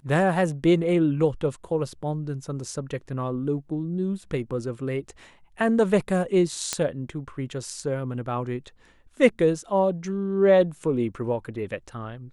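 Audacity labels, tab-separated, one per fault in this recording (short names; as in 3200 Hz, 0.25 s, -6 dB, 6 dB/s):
6.730000	6.730000	pop -9 dBFS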